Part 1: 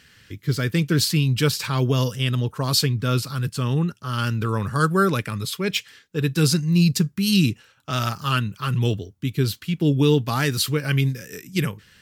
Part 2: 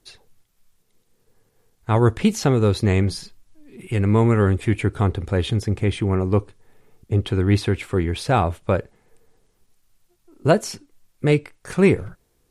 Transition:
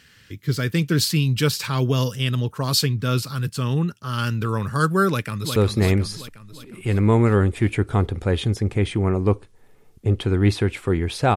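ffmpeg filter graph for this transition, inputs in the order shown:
-filter_complex "[0:a]apad=whole_dur=11.36,atrim=end=11.36,atrim=end=5.562[s0];[1:a]atrim=start=2.618:end=8.42[s1];[s0][s1]acrossfade=d=0.004:c1=hsin:c2=hsin,asplit=2[s2][s3];[s3]afade=t=in:st=5.09:d=0.01,afade=t=out:st=5.56:d=0.01,aecho=0:1:360|720|1080|1440|1800|2160|2520:0.501187|0.275653|0.151609|0.083385|0.0458618|0.025224|0.0138732[s4];[s2][s4]amix=inputs=2:normalize=0"

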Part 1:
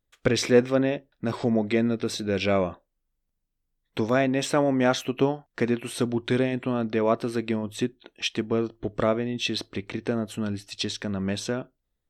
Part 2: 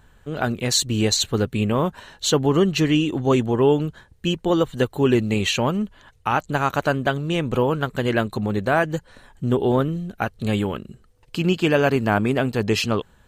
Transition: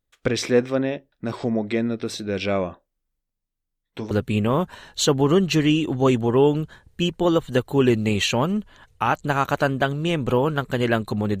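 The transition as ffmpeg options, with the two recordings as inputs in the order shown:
-filter_complex "[0:a]asplit=3[s0][s1][s2];[s0]afade=t=out:st=3.2:d=0.02[s3];[s1]flanger=delay=5.4:depth=4.9:regen=-53:speed=0.38:shape=sinusoidal,afade=t=in:st=3.2:d=0.02,afade=t=out:st=4.11:d=0.02[s4];[s2]afade=t=in:st=4.11:d=0.02[s5];[s3][s4][s5]amix=inputs=3:normalize=0,apad=whole_dur=11.4,atrim=end=11.4,atrim=end=4.112[s6];[1:a]atrim=start=1.358:end=8.65[s7];[s6][s7]acrossfade=d=0.004:c1=hsin:c2=hsin"

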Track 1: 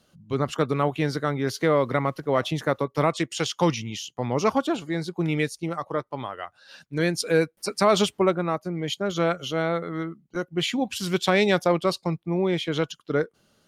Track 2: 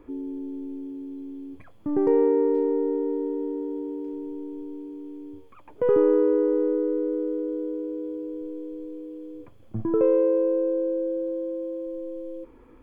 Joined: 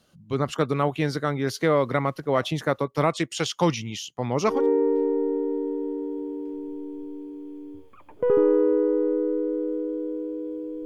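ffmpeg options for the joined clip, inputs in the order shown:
-filter_complex "[0:a]apad=whole_dur=10.85,atrim=end=10.85,atrim=end=4.67,asetpts=PTS-STARTPTS[s0];[1:a]atrim=start=2.04:end=8.44,asetpts=PTS-STARTPTS[s1];[s0][s1]acrossfade=d=0.22:c1=tri:c2=tri"

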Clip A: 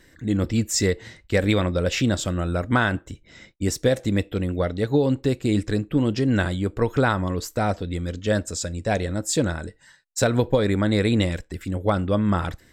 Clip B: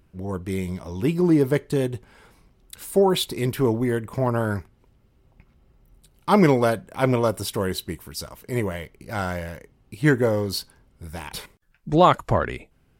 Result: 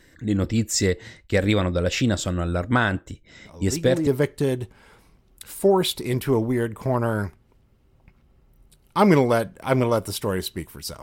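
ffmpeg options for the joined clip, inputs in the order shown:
-filter_complex "[1:a]asplit=2[s0][s1];[0:a]apad=whole_dur=11.02,atrim=end=11.02,atrim=end=4.072[s2];[s1]atrim=start=1.388:end=8.34[s3];[s0]atrim=start=0.77:end=1.39,asetpts=PTS-STARTPTS,volume=0.398,afade=t=in:d=0.004:c=hsin,afade=t=out:st=0.616:d=0.004:c=hsin,adelay=152145S[s4];[s2][s3]acrossfade=d=0.004:c1=hsin:c2=hsin[s5];[s5][s4]amix=inputs=2:normalize=0"

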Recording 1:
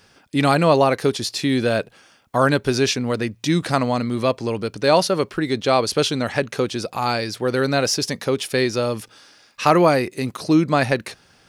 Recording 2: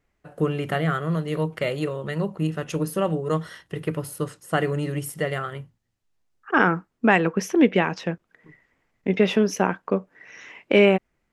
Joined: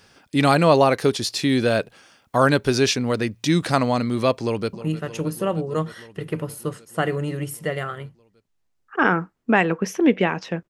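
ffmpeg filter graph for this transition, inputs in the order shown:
-filter_complex "[0:a]apad=whole_dur=10.69,atrim=end=10.69,atrim=end=4.732[s0];[1:a]atrim=start=2.278:end=8.24[s1];[s0][s1]acrossfade=d=0.004:c1=hsin:c2=hsin,asplit=2[s2][s3];[s3]afade=t=in:st=4.42:d=0.01,afade=t=out:st=4.73:d=0.01,aecho=0:1:310|620|930|1240|1550|1860|2170|2480|2790|3100|3410|3720:0.199526|0.159621|0.127697|0.102157|0.0817259|0.0653808|0.0523046|0.0418437|0.0334749|0.02678|0.021424|0.0171392[s4];[s2][s4]amix=inputs=2:normalize=0"

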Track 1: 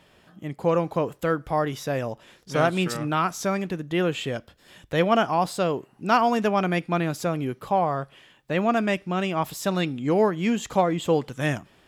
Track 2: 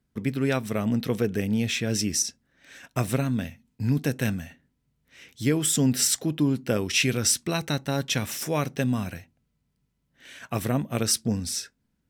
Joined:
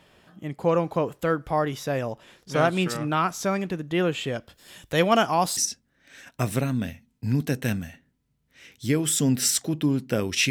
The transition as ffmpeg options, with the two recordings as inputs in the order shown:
-filter_complex "[0:a]asettb=1/sr,asplit=3[s0][s1][s2];[s0]atrim=end=4.494[s3];[s1]atrim=start=4.49:end=5.57,asetpts=PTS-STARTPTS,afade=t=in:d=0.004:c=qsin,afade=t=out:st=1.076:d=0.004:c=qsin,highshelf=f=4300:g=11[s4];[s2]atrim=start=5.566[s5];[s3][s4]acrossfade=d=0.004:c1=hsin:c2=qsin[s6];[s6][s5]acrossfade=d=0.004:c1=qsin:c2=hsin,apad=whole_dur=10.5,atrim=end=10.5,atrim=end=5.572[s7];[1:a]atrim=start=2.138:end=7.07[s8];[s7][s8]acrossfade=d=0.004:c1=hsin:c2=hsin"

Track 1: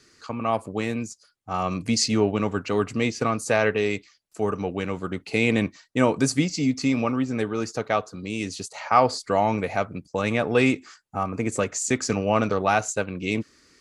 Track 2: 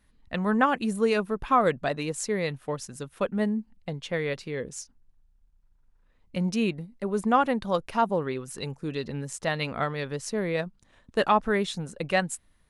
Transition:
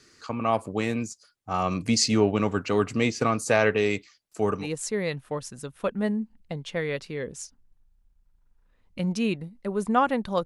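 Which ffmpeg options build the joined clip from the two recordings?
-filter_complex "[0:a]apad=whole_dur=10.45,atrim=end=10.45,atrim=end=4.68,asetpts=PTS-STARTPTS[s0];[1:a]atrim=start=1.93:end=7.82,asetpts=PTS-STARTPTS[s1];[s0][s1]acrossfade=d=0.12:c1=tri:c2=tri"

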